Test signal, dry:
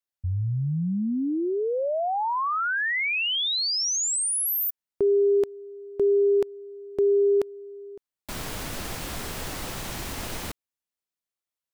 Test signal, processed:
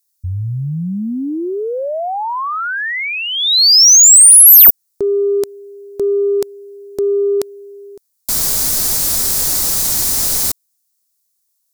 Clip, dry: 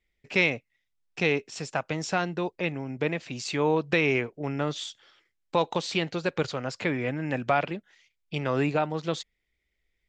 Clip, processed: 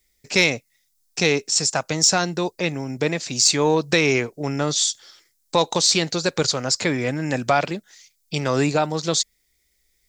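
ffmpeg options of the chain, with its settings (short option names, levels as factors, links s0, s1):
-af "aexciter=amount=6.9:drive=4.6:freq=4200,acontrast=44"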